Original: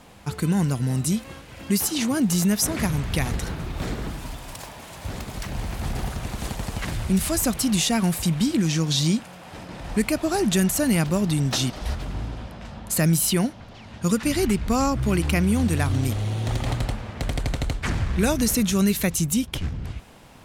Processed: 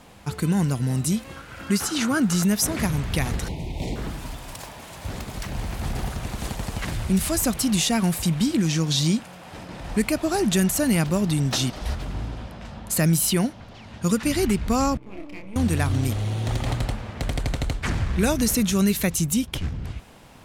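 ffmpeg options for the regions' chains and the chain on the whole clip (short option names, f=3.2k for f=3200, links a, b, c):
-filter_complex "[0:a]asettb=1/sr,asplit=3[a][b][c];[a]atrim=end=1.364[d];[b]atrim=start=1.36:end=2.43,asetpts=PTS-STARTPTS,afade=t=in:d=0.004:c=qsin,afade=t=out:st=1.066:d=0.004:c=qsin,acrossover=split=9800[e][f];[f]acompressor=threshold=-42dB:ratio=4:attack=1:release=60[g];[e][g]amix=inputs=2:normalize=0,equalizer=f=1.4k:t=o:w=0.44:g=13[h];[c]atrim=start=2.426[i];[d][h]acrossfade=d=0.004:c1=hsin:c2=qsin[j];[j][i]acrossfade=d=0.004:c1=qsin:c2=hsin,asettb=1/sr,asplit=3[k][l][m];[k]atrim=end=3.484[n];[l]atrim=start=3.48:end=3.96,asetpts=PTS-STARTPTS,afade=t=in:d=0.004:c=qsin,afade=t=out:st=0.476:d=0.004:c=qsin,asuperstop=centerf=1400:order=8:qfactor=1.3,highshelf=f=11k:g=-7[o];[m]atrim=start=3.956[p];[n][o]acrossfade=d=0.004:c1=hsin:c2=qsin[q];[q][p]acrossfade=d=0.004:c1=qsin:c2=hsin,asettb=1/sr,asplit=3[r][s][t];[r]atrim=end=14.974[u];[s]atrim=start=14.97:end=15.56,asetpts=PTS-STARTPTS,afade=t=in:d=0.004:c=qsin,afade=t=out:st=0.586:d=0.004:c=qsin,asplit=3[v][w][x];[v]bandpass=f=300:t=q:w=8,volume=0dB[y];[w]bandpass=f=870:t=q:w=8,volume=-6dB[z];[x]bandpass=f=2.24k:t=q:w=8,volume=-9dB[aa];[y][z][aa]amix=inputs=3:normalize=0,aeval=exprs='max(val(0),0)':c=same,asplit=2[ab][ac];[ac]adelay=31,volume=-4dB[ad];[ab][ad]amix=inputs=2:normalize=0,atrim=end_sample=26019[ae];[t]atrim=start=15.556[af];[u][ae]acrossfade=d=0.004:c1=hsin:c2=qsin[ag];[ag][af]acrossfade=d=0.004:c1=qsin:c2=hsin"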